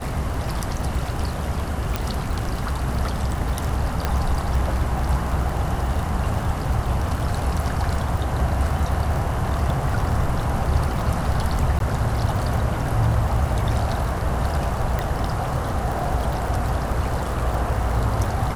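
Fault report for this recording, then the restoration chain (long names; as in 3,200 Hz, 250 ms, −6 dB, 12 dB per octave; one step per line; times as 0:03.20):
surface crackle 49 per second −26 dBFS
0:01.96: click
0:04.05: click −7 dBFS
0:11.79–0:11.80: drop-out 12 ms
0:14.99: click −11 dBFS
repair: click removal
repair the gap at 0:11.79, 12 ms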